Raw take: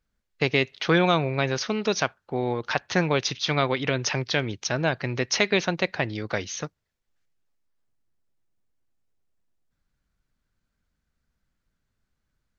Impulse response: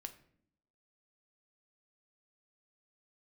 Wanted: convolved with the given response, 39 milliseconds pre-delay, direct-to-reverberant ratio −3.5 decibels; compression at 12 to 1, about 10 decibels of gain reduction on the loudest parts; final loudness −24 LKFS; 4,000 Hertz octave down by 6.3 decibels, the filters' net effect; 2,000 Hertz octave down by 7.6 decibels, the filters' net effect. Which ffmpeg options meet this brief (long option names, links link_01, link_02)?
-filter_complex "[0:a]equalizer=frequency=2000:width_type=o:gain=-8.5,equalizer=frequency=4000:width_type=o:gain=-5.5,acompressor=threshold=-27dB:ratio=12,asplit=2[link_01][link_02];[1:a]atrim=start_sample=2205,adelay=39[link_03];[link_02][link_03]afir=irnorm=-1:irlink=0,volume=8dB[link_04];[link_01][link_04]amix=inputs=2:normalize=0,volume=4.5dB"